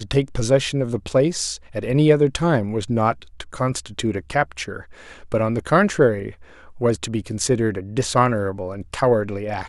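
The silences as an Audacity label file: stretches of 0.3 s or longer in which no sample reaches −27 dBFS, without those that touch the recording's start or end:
4.800000	5.320000	silence
6.290000	6.810000	silence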